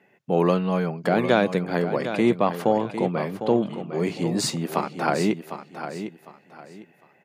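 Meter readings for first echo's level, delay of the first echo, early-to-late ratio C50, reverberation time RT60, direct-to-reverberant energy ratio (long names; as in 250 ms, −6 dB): −10.0 dB, 754 ms, no reverb audible, no reverb audible, no reverb audible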